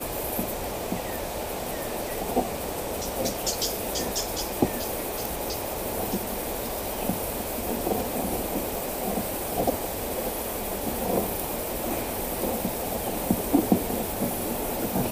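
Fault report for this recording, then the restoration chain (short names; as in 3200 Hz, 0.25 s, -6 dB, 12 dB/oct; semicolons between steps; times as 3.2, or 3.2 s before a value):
8.75 pop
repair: de-click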